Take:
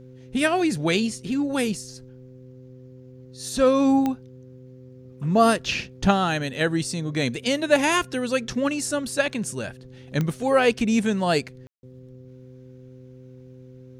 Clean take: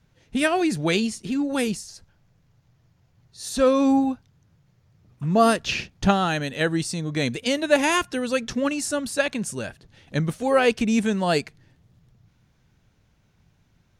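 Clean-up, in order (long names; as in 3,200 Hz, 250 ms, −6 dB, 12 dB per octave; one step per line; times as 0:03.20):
click removal
hum removal 128.1 Hz, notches 4
ambience match 0:11.67–0:11.83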